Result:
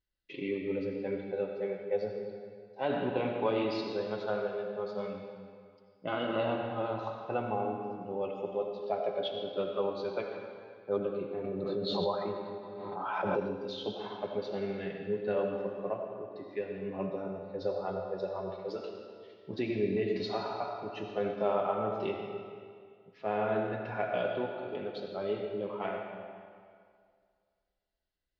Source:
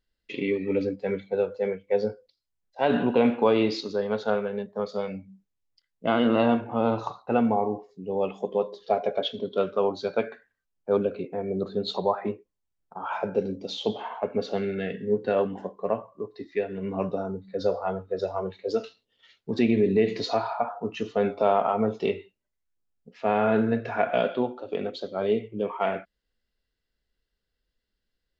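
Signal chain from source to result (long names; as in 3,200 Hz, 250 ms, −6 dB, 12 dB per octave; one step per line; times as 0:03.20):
low-pass filter 5,400 Hz 24 dB per octave
notch comb filter 230 Hz
comb and all-pass reverb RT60 2.1 s, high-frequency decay 0.85×, pre-delay 40 ms, DRR 3 dB
0:11.44–0:13.58: background raised ahead of every attack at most 23 dB per second
level −7.5 dB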